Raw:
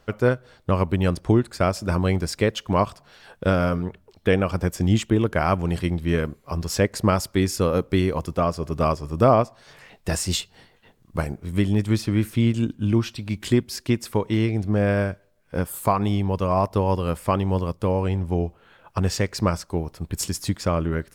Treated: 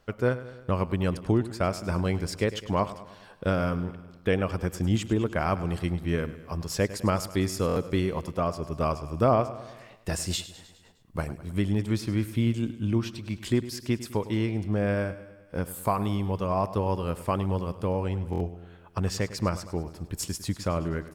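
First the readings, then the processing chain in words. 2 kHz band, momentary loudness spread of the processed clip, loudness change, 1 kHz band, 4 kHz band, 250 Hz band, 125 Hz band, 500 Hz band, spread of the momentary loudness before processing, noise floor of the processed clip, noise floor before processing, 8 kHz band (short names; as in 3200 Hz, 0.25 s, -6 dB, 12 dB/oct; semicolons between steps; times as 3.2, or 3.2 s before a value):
-5.5 dB, 8 LU, -5.5 dB, -5.5 dB, -5.5 dB, -5.5 dB, -5.5 dB, -5.5 dB, 8 LU, -52 dBFS, -59 dBFS, -5.5 dB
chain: feedback echo 0.103 s, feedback 58%, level -15 dB; stuck buffer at 7.67/18.31, samples 1024, times 3; gain -5.5 dB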